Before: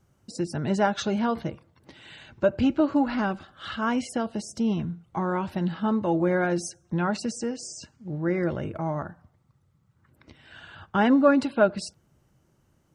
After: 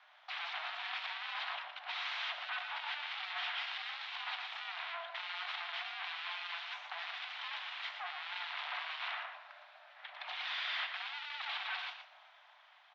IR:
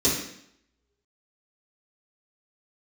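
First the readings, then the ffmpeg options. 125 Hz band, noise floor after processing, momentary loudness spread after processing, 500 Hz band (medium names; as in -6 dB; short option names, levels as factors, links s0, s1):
under -40 dB, -63 dBFS, 7 LU, -29.5 dB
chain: -filter_complex "[0:a]aemphasis=mode=production:type=50kf,aeval=exprs='abs(val(0))':c=same,dynaudnorm=f=170:g=17:m=3.98,alimiter=limit=0.2:level=0:latency=1,asoftclip=type=tanh:threshold=0.0119,tiltshelf=f=1200:g=-4.5,asplit=2[s0][s1];[s1]adelay=116.6,volume=0.447,highshelf=f=4000:g=-2.62[s2];[s0][s2]amix=inputs=2:normalize=0,asplit=2[s3][s4];[1:a]atrim=start_sample=2205[s5];[s4][s5]afir=irnorm=-1:irlink=0,volume=0.0668[s6];[s3][s6]amix=inputs=2:normalize=0,highpass=f=430:t=q:w=0.5412,highpass=f=430:t=q:w=1.307,lowpass=f=3300:t=q:w=0.5176,lowpass=f=3300:t=q:w=0.7071,lowpass=f=3300:t=q:w=1.932,afreqshift=330,volume=3.98"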